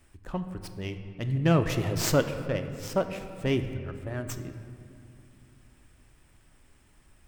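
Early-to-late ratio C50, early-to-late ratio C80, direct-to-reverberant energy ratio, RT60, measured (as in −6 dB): 9.5 dB, 10.0 dB, 7.5 dB, 2.5 s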